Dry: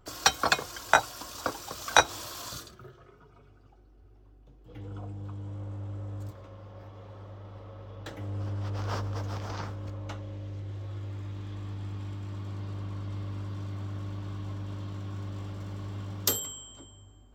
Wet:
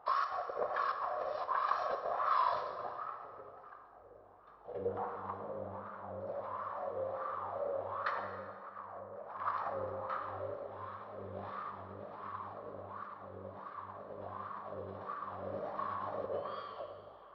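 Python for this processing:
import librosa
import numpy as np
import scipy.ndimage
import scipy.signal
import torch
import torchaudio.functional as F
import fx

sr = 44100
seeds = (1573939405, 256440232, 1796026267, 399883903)

y = fx.lower_of_two(x, sr, delay_ms=1.7)
y = fx.env_lowpass_down(y, sr, base_hz=1700.0, full_db=-29.0)
y = fx.over_compress(y, sr, threshold_db=-40.0, ratio=-0.5)
y = scipy.signal.sosfilt(scipy.signal.cheby1(6, 6, 5500.0, 'lowpass', fs=sr, output='sos'), y)
y = fx.wah_lfo(y, sr, hz=1.4, low_hz=510.0, high_hz=1200.0, q=5.1)
y = fx.wow_flutter(y, sr, seeds[0], rate_hz=2.1, depth_cents=77.0)
y = fx.rev_plate(y, sr, seeds[1], rt60_s=2.0, hf_ratio=0.75, predelay_ms=0, drr_db=4.5)
y = y * librosa.db_to_amplitude(18.0)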